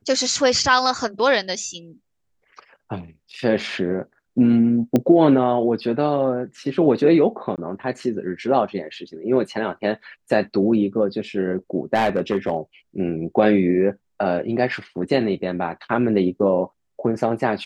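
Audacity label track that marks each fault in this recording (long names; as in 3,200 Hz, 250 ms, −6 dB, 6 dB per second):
4.960000	4.960000	click −7 dBFS
7.560000	7.580000	drop-out 18 ms
11.950000	12.570000	clipping −14 dBFS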